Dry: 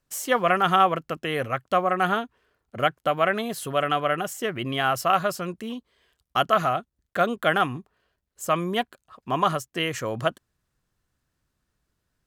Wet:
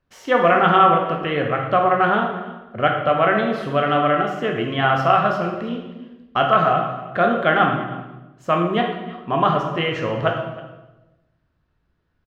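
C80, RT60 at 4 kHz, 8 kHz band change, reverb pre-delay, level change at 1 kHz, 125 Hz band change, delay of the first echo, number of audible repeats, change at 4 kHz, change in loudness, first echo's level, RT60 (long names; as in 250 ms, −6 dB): 7.0 dB, 1.0 s, below −15 dB, 13 ms, +6.0 dB, +7.5 dB, 317 ms, 1, +1.5 dB, +5.5 dB, −19.0 dB, 1.1 s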